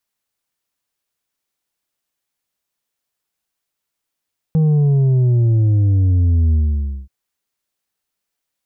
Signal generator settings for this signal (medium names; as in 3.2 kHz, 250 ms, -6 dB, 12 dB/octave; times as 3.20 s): sub drop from 160 Hz, over 2.53 s, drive 5 dB, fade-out 0.55 s, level -11.5 dB